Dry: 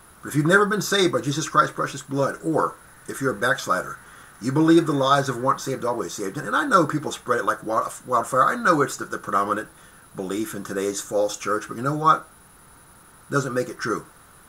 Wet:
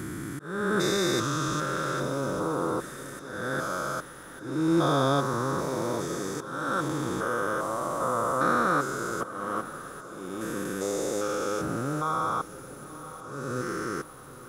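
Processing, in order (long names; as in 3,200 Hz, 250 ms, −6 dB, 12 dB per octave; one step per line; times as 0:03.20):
spectrum averaged block by block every 400 ms
volume swells 457 ms
feedback delay with all-pass diffusion 987 ms, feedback 49%, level −14.5 dB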